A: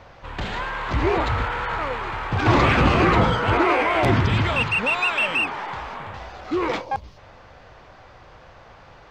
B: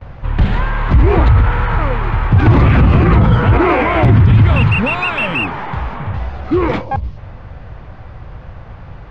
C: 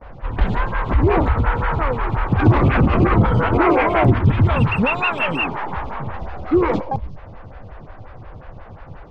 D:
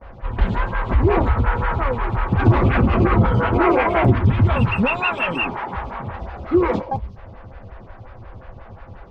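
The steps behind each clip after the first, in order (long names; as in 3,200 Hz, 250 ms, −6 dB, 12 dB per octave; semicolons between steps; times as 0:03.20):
noise gate with hold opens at −38 dBFS; bass and treble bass +15 dB, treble −12 dB; boost into a limiter +6.5 dB; level −1 dB
phaser with staggered stages 5.6 Hz
notch comb filter 150 Hz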